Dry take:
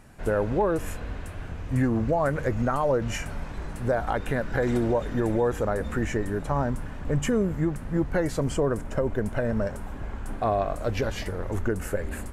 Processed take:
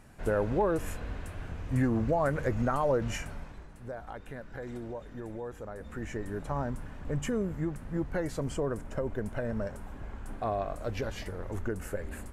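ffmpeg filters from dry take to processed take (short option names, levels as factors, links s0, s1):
-af "volume=1.78,afade=t=out:st=3.05:d=0.63:silence=0.251189,afade=t=in:st=5.74:d=0.67:silence=0.375837"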